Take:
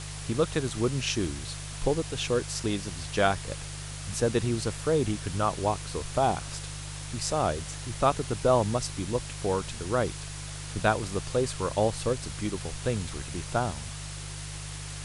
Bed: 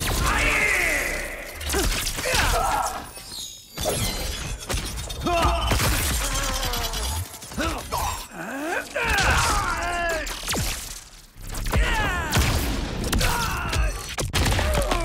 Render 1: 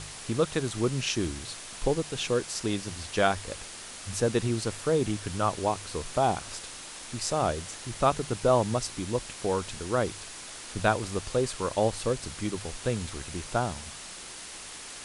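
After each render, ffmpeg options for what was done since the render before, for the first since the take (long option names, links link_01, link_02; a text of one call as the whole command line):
ffmpeg -i in.wav -af "bandreject=frequency=50:width_type=h:width=4,bandreject=frequency=100:width_type=h:width=4,bandreject=frequency=150:width_type=h:width=4" out.wav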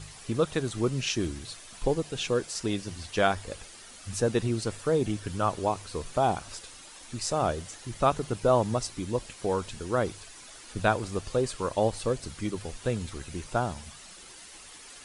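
ffmpeg -i in.wav -af "afftdn=noise_reduction=9:noise_floor=-43" out.wav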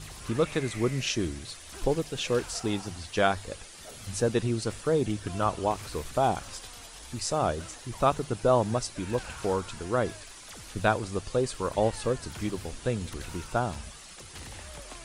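ffmpeg -i in.wav -i bed.wav -filter_complex "[1:a]volume=-23dB[link_01];[0:a][link_01]amix=inputs=2:normalize=0" out.wav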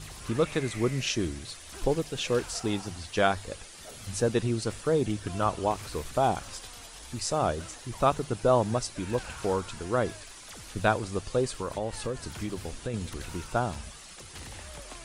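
ffmpeg -i in.wav -filter_complex "[0:a]asettb=1/sr,asplit=3[link_01][link_02][link_03];[link_01]atrim=end=11.564[link_04];[link_02]atrim=start=11.56:end=12.94,asetpts=PTS-STARTPTS,afade=type=in:duration=0.004:curve=qsin,afade=type=out:start_time=1.376:duration=0.004:curve=qsin,acompressor=threshold=-28dB:ratio=4:attack=3.2:release=140:knee=1:detection=peak[link_05];[link_03]atrim=start=12.936[link_06];[link_04][link_05]acrossfade=duration=0.004:curve1=hsin:curve2=qsin[link_07];[link_07][link_06]acrossfade=duration=0.004:curve1=qsin:curve2=hsin" out.wav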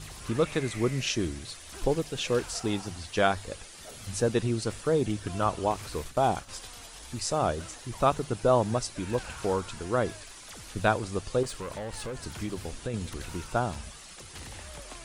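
ffmpeg -i in.wav -filter_complex "[0:a]asplit=3[link_01][link_02][link_03];[link_01]afade=type=out:start_time=6.04:duration=0.02[link_04];[link_02]agate=range=-33dB:threshold=-37dB:ratio=3:release=100:detection=peak,afade=type=in:start_time=6.04:duration=0.02,afade=type=out:start_time=6.48:duration=0.02[link_05];[link_03]afade=type=in:start_time=6.48:duration=0.02[link_06];[link_04][link_05][link_06]amix=inputs=3:normalize=0,asettb=1/sr,asplit=3[link_07][link_08][link_09];[link_07]atrim=end=11.434[link_10];[link_08]atrim=start=11.43:end=12.25,asetpts=PTS-STARTPTS,afade=type=in:duration=0.004:curve=qsin,afade=type=out:start_time=0.816:duration=0.004:curve=qsin,asoftclip=type=hard:threshold=-32.5dB[link_11];[link_09]atrim=start=12.246[link_12];[link_10][link_11]acrossfade=duration=0.004:curve1=hsin:curve2=qsin[link_13];[link_13][link_12]acrossfade=duration=0.004:curve1=qsin:curve2=hsin" out.wav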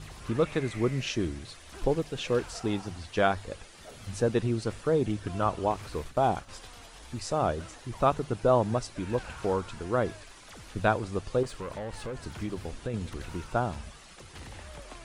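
ffmpeg -i in.wav -af "highshelf=frequency=4400:gain=-10" out.wav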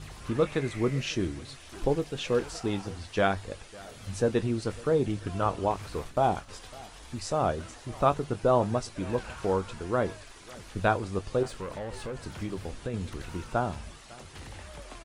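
ffmpeg -i in.wav -filter_complex "[0:a]asplit=2[link_01][link_02];[link_02]adelay=21,volume=-12.5dB[link_03];[link_01][link_03]amix=inputs=2:normalize=0,aecho=1:1:553:0.0794" out.wav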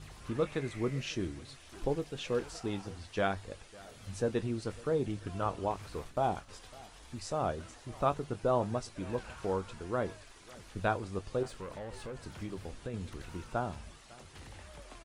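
ffmpeg -i in.wav -af "volume=-6dB" out.wav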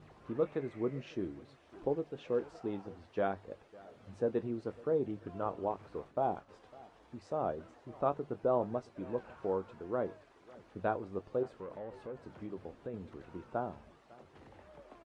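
ffmpeg -i in.wav -af "bandpass=frequency=450:width_type=q:width=0.67:csg=0" out.wav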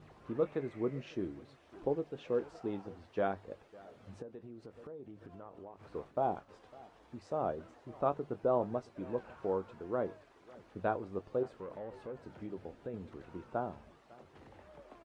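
ffmpeg -i in.wav -filter_complex "[0:a]asplit=3[link_01][link_02][link_03];[link_01]afade=type=out:start_time=4.21:duration=0.02[link_04];[link_02]acompressor=threshold=-48dB:ratio=4:attack=3.2:release=140:knee=1:detection=peak,afade=type=in:start_time=4.21:duration=0.02,afade=type=out:start_time=5.87:duration=0.02[link_05];[link_03]afade=type=in:start_time=5.87:duration=0.02[link_06];[link_04][link_05][link_06]amix=inputs=3:normalize=0,asettb=1/sr,asplit=3[link_07][link_08][link_09];[link_07]atrim=end=12.224[link_10];[link_08]atrim=start=12.22:end=12.95,asetpts=PTS-STARTPTS,afade=type=in:duration=0.004:curve=qsin,afade=type=out:start_time=0.726:duration=0.004:curve=qsin,asuperstop=centerf=1100:order=4:qfactor=7.9[link_11];[link_09]atrim=start=12.946[link_12];[link_10][link_11]acrossfade=duration=0.004:curve1=hsin:curve2=qsin[link_13];[link_13][link_12]acrossfade=duration=0.004:curve1=qsin:curve2=hsin" out.wav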